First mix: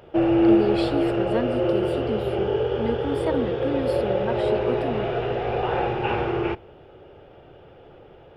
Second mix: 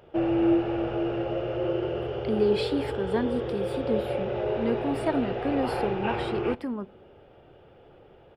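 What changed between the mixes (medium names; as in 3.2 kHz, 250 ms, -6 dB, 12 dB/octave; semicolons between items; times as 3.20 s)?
speech: entry +1.80 s; background -5.5 dB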